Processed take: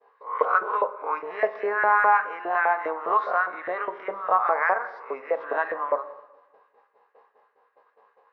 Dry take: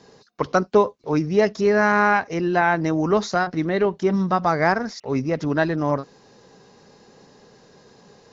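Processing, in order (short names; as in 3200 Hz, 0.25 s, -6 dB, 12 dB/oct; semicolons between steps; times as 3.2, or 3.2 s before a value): spectral swells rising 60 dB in 0.43 s; LFO high-pass saw up 4.9 Hz 550–1800 Hz; speaker cabinet 160–2500 Hz, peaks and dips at 170 Hz -3 dB, 470 Hz +8 dB, 1100 Hz +8 dB; expander -41 dBFS; reverb RT60 1.1 s, pre-delay 8 ms, DRR 10.5 dB; gain -8.5 dB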